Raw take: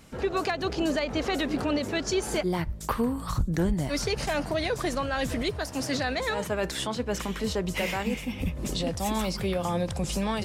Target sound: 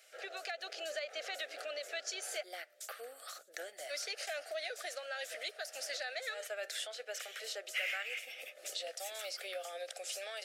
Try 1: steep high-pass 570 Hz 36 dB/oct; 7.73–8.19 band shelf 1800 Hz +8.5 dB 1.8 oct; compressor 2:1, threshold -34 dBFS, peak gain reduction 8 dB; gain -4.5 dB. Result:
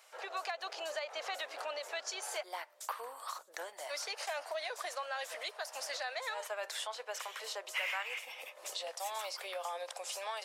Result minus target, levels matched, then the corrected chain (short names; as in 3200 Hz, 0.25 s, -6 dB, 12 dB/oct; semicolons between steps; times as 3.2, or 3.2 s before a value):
1000 Hz band +7.0 dB
steep high-pass 570 Hz 36 dB/oct; 7.73–8.19 band shelf 1800 Hz +8.5 dB 1.8 oct; compressor 2:1, threshold -34 dBFS, peak gain reduction 8 dB; Butterworth band-stop 980 Hz, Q 1.5; gain -4.5 dB